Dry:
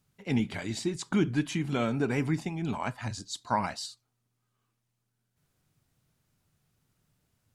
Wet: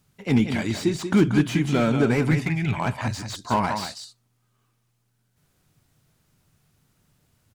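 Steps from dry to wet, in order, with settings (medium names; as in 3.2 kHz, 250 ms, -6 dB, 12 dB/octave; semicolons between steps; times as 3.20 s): 2.31–2.80 s: graphic EQ 125/250/500/1000/2000/4000/8000 Hz +8/-10/-4/-7/+11/-3/-6 dB; delay 184 ms -9 dB; slew-rate limiter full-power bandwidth 46 Hz; trim +8 dB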